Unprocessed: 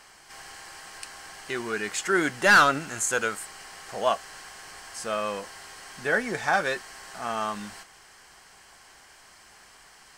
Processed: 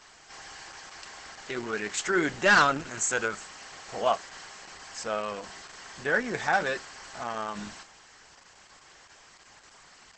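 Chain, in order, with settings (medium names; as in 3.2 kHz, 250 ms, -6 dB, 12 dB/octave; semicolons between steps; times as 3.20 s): de-hum 195.5 Hz, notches 2; Opus 10 kbps 48 kHz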